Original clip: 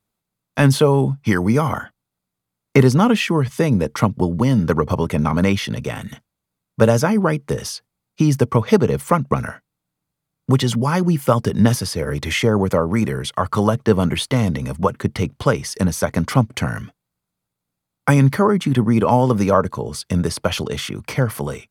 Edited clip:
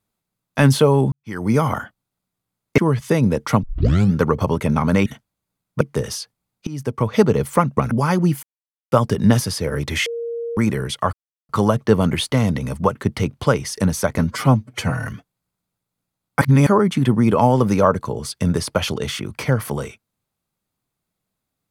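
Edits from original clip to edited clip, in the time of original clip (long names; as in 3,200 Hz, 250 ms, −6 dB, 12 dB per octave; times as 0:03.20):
0:01.12–0:01.54: fade in quadratic
0:02.78–0:03.27: remove
0:04.12: tape start 0.50 s
0:05.55–0:06.07: remove
0:06.82–0:07.35: remove
0:08.21–0:08.78: fade in, from −21 dB
0:09.45–0:10.75: remove
0:11.27: splice in silence 0.49 s
0:12.41–0:12.92: beep over 467 Hz −23.5 dBFS
0:13.48: splice in silence 0.36 s
0:16.17–0:16.76: time-stretch 1.5×
0:18.11–0:18.36: reverse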